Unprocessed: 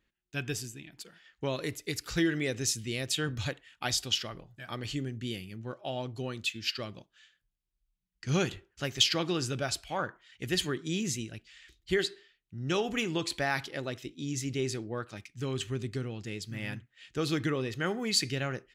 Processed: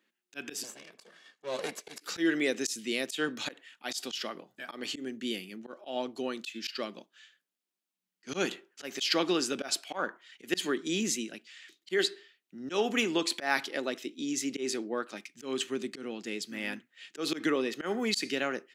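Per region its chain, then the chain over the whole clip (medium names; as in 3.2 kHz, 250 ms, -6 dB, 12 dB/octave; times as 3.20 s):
0.63–2.01 s: comb filter that takes the minimum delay 1.8 ms + low-pass 10 kHz
whole clip: steep high-pass 210 Hz 36 dB/octave; slow attack 118 ms; trim +3.5 dB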